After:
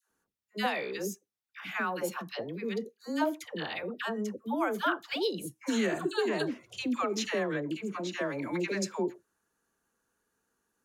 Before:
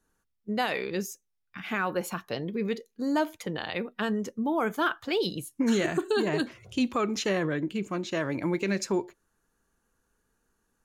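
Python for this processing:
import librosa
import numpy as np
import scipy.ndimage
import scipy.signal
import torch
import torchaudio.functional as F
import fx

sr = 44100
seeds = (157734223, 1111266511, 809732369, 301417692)

y = fx.highpass(x, sr, hz=230.0, slope=6)
y = fx.dispersion(y, sr, late='lows', ms=96.0, hz=760.0)
y = y * 10.0 ** (-2.0 / 20.0)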